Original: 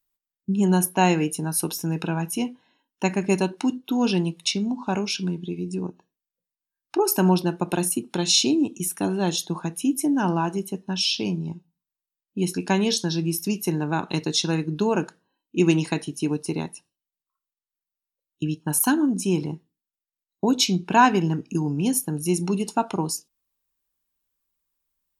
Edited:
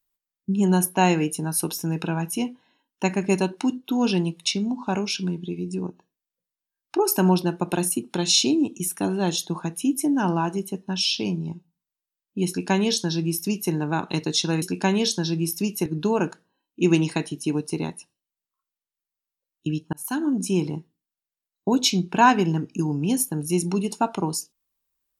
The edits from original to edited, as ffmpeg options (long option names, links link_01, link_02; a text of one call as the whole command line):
ffmpeg -i in.wav -filter_complex "[0:a]asplit=4[link_01][link_02][link_03][link_04];[link_01]atrim=end=14.622[link_05];[link_02]atrim=start=12.478:end=13.722[link_06];[link_03]atrim=start=14.618:end=18.69,asetpts=PTS-STARTPTS,afade=type=out:start_time=4.068:duration=0.004:curve=hsin[link_07];[link_04]atrim=start=18.69,asetpts=PTS-STARTPTS,afade=type=in:duration=0.45[link_08];[link_05][link_06]acrossfade=duration=0.004:curve1=hsin:curve2=hsin[link_09];[link_07][link_08]concat=n=2:v=0:a=1[link_10];[link_09][link_10]acrossfade=duration=0.004:curve1=hsin:curve2=hsin" out.wav